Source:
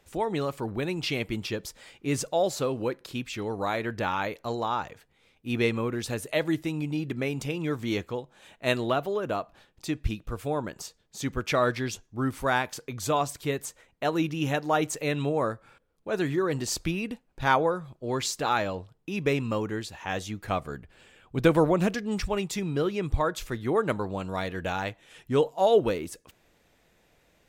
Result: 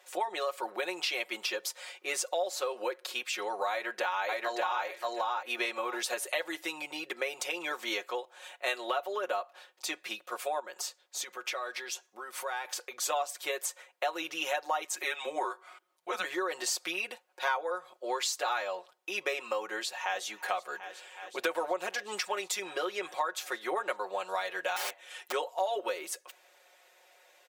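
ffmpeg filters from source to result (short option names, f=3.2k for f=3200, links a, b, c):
-filter_complex "[0:a]asplit=2[a][b];[b]afade=t=in:st=3.7:d=0.01,afade=t=out:st=4.84:d=0.01,aecho=0:1:580|1160|1740:0.841395|0.126209|0.0189314[c];[a][c]amix=inputs=2:normalize=0,asettb=1/sr,asplit=3[d][e][f];[d]atrim=end=10.594[g];[e]atrim=start=10.59:end=13.01,asetpts=PTS-STARTPTS,afade=t=in:d=0.004:c=qsin,afade=t=out:st=2.416:d=0.004:c=qsin,acompressor=threshold=-36dB:ratio=6:attack=3.2:release=140:knee=1:detection=peak[h];[f]atrim=start=13.006[i];[g][h]acrossfade=d=0.004:c1=hsin:c2=qsin[j];[j][i]acrossfade=d=0.004:c1=qsin:c2=hsin,asettb=1/sr,asplit=3[k][l][m];[k]atrim=end=14.844[n];[l]atrim=start=14.84:end=16.24,asetpts=PTS-STARTPTS,afade=t=in:d=0.004:c=qsin,afade=t=out:st=1.396:d=0.004:c=qsin,afreqshift=-170[o];[m]atrim=start=16.236[p];[n][o]acrossfade=d=0.004:c1=hsin:c2=qsin[q];[q][p]acrossfade=d=0.004:c1=qsin:c2=hsin,asplit=2[r][s];[s]afade=t=in:st=19.74:d=0.01,afade=t=out:st=20.25:d=0.01,aecho=0:1:370|740|1110|1480|1850|2220|2590|2960|3330|3700|4070|4440:0.149624|0.12718|0.108103|0.0918876|0.0781044|0.0663888|0.0564305|0.0479659|0.040771|0.0346554|0.0294571|0.0250385[t];[r][t]amix=inputs=2:normalize=0,asettb=1/sr,asplit=3[u][v][w];[u]atrim=end=24.764[x];[v]atrim=start=24.76:end=25.32,asetpts=PTS-STARTPTS,afade=t=in:d=0.004:c=qsin,afade=t=out:st=0.556:d=0.004:c=qsin,aeval=exprs='(mod(31.6*val(0)+1,2)-1)/31.6':c=same[y];[w]atrim=start=25.316[z];[x][y]acrossfade=d=0.004:c1=hsin:c2=qsin[aa];[aa][z]acrossfade=d=0.004:c1=qsin:c2=hsin,highpass=f=520:w=0.5412,highpass=f=520:w=1.3066,aecho=1:1:5.5:0.9,acompressor=threshold=-33dB:ratio=4,volume=3dB"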